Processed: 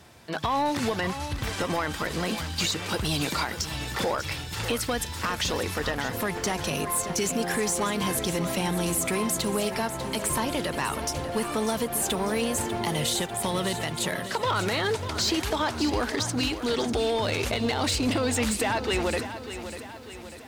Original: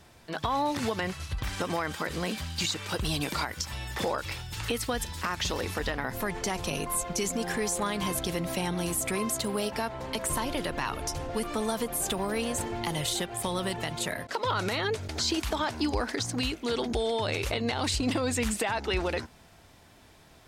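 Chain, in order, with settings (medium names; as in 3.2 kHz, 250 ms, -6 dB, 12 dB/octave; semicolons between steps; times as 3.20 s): high-pass 65 Hz; in parallel at -5.5 dB: wavefolder -25.5 dBFS; on the sum: bit-crushed delay 595 ms, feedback 55%, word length 9-bit, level -11 dB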